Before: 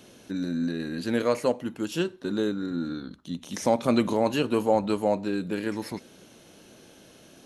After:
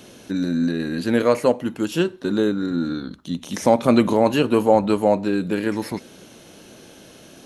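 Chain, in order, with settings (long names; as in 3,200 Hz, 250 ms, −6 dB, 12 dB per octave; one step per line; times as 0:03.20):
dynamic equaliser 5,600 Hz, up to −4 dB, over −45 dBFS, Q 0.72
level +7 dB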